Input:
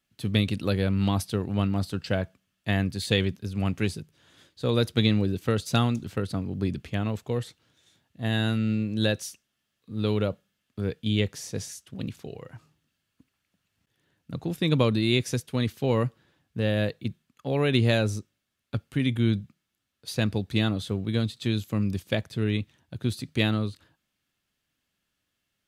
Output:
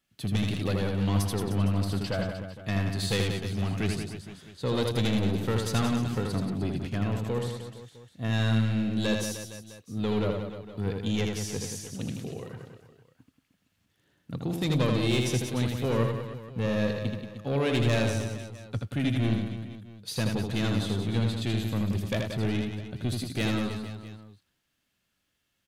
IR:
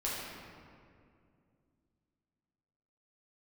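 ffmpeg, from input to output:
-af "asoftclip=type=tanh:threshold=-22dB,aecho=1:1:80|180|305|461.2|656.6:0.631|0.398|0.251|0.158|0.1"

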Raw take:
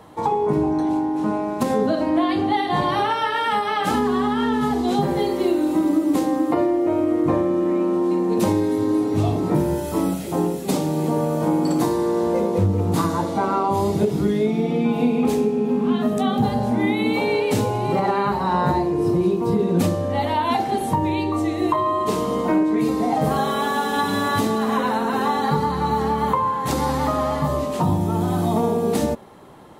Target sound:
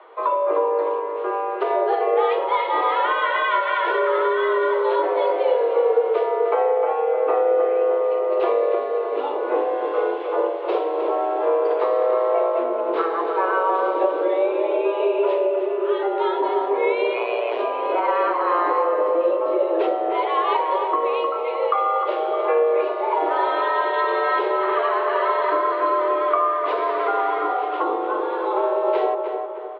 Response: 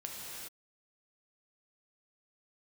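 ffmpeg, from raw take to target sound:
-filter_complex "[0:a]asplit=3[a][b][c];[a]afade=t=out:st=17.13:d=0.02[d];[b]tremolo=f=120:d=0.889,afade=t=in:st=17.13:d=0.02,afade=t=out:st=17.58:d=0.02[e];[c]afade=t=in:st=17.58:d=0.02[f];[d][e][f]amix=inputs=3:normalize=0,asplit=2[g][h];[h]adelay=307,lowpass=f=1.9k:p=1,volume=-5.5dB,asplit=2[i][j];[j]adelay=307,lowpass=f=1.9k:p=1,volume=0.49,asplit=2[k][l];[l]adelay=307,lowpass=f=1.9k:p=1,volume=0.49,asplit=2[m][n];[n]adelay=307,lowpass=f=1.9k:p=1,volume=0.49,asplit=2[o][p];[p]adelay=307,lowpass=f=1.9k:p=1,volume=0.49,asplit=2[q][r];[r]adelay=307,lowpass=f=1.9k:p=1,volume=0.49[s];[g][i][k][m][o][q][s]amix=inputs=7:normalize=0,highpass=f=220:t=q:w=0.5412,highpass=f=220:t=q:w=1.307,lowpass=f=3.1k:t=q:w=0.5176,lowpass=f=3.1k:t=q:w=0.7071,lowpass=f=3.1k:t=q:w=1.932,afreqshift=160"

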